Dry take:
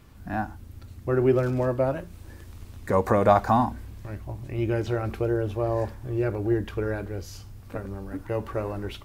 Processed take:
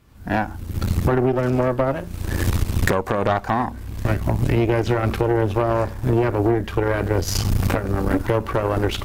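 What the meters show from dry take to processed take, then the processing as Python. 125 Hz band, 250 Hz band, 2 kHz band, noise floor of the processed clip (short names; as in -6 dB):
+8.0 dB, +6.0 dB, +9.5 dB, -34 dBFS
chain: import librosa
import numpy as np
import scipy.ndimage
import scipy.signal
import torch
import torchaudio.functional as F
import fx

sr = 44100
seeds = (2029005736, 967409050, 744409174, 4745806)

y = fx.recorder_agc(x, sr, target_db=-8.5, rise_db_per_s=39.0, max_gain_db=30)
y = fx.cheby_harmonics(y, sr, harmonics=(6, 8), levels_db=(-15, -12), full_scale_db=2.0)
y = F.gain(torch.from_numpy(y), -4.0).numpy()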